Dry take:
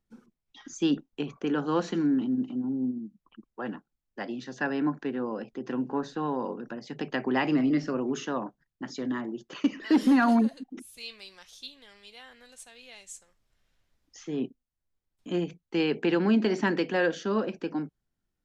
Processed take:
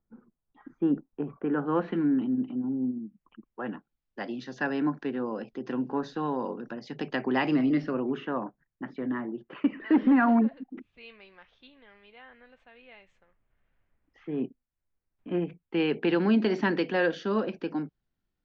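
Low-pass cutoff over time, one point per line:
low-pass 24 dB/octave
1.21 s 1.5 kHz
2.02 s 2.8 kHz
3.61 s 2.8 kHz
4.25 s 5.7 kHz
7.47 s 5.7 kHz
8.36 s 2.4 kHz
15.46 s 2.4 kHz
16.19 s 4.8 kHz

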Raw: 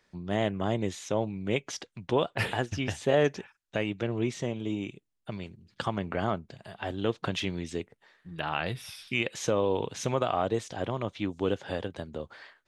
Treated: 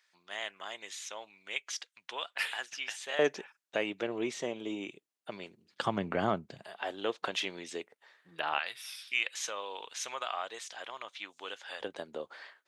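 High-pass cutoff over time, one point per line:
1.5 kHz
from 3.19 s 370 Hz
from 5.85 s 150 Hz
from 6.64 s 490 Hz
from 8.59 s 1.3 kHz
from 11.81 s 400 Hz

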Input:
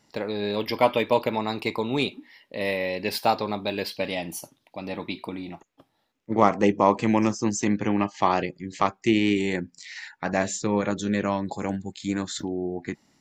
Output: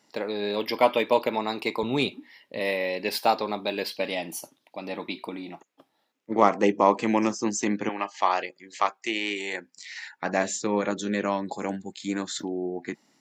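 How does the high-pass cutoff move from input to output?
230 Hz
from 1.83 s 98 Hz
from 2.59 s 230 Hz
from 7.89 s 610 Hz
from 9.77 s 220 Hz

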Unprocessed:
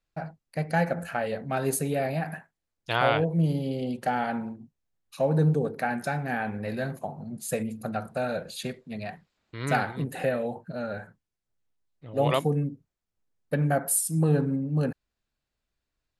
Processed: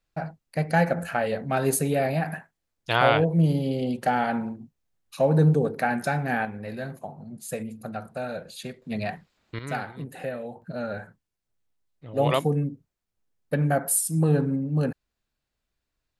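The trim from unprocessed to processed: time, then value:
+3.5 dB
from 6.45 s -3 dB
from 8.82 s +6 dB
from 9.59 s -5.5 dB
from 10.62 s +1.5 dB

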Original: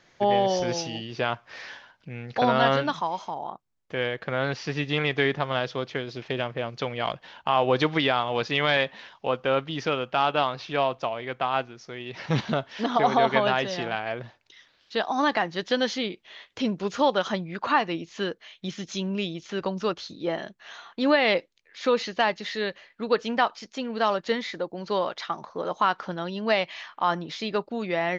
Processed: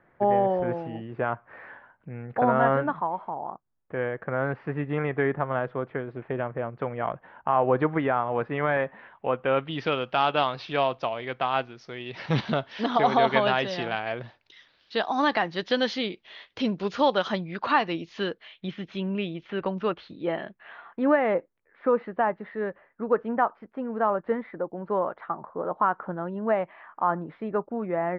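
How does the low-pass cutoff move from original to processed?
low-pass 24 dB/octave
8.85 s 1.7 kHz
9.52 s 2.6 kHz
9.98 s 5 kHz
18.11 s 5 kHz
18.82 s 2.9 kHz
20.38 s 2.9 kHz
21.35 s 1.5 kHz

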